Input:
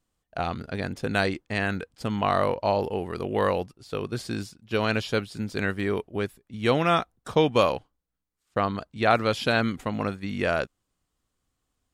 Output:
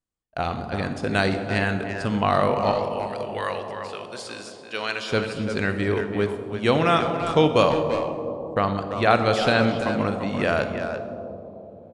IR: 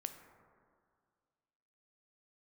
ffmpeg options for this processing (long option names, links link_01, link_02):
-filter_complex "[0:a]asettb=1/sr,asplit=3[link_01][link_02][link_03];[link_01]atrim=end=2.714[link_04];[link_02]atrim=start=2.71:end=5.11,asetpts=PTS-STARTPTS,afade=type=in:duration=0.004:curve=qsin,afade=type=out:start_time=2.396:duration=0.004:curve=qsin,highpass=frequency=1400:poles=1[link_05];[link_03]atrim=start=5.106[link_06];[link_04][link_05]acrossfade=duration=0.004:curve1=hsin:curve2=qsin[link_07];[link_07][link_06]acrossfade=duration=0.004:curve1=qsin:curve2=hsin,agate=range=-15dB:threshold=-52dB:ratio=16:detection=peak,asplit=2[link_08][link_09];[link_09]adelay=340,highpass=300,lowpass=3400,asoftclip=type=hard:threshold=-16.5dB,volume=-7dB[link_10];[link_08][link_10]amix=inputs=2:normalize=0[link_11];[1:a]atrim=start_sample=2205,asetrate=22932,aresample=44100[link_12];[link_11][link_12]afir=irnorm=-1:irlink=0,aresample=22050,aresample=44100,volume=2dB"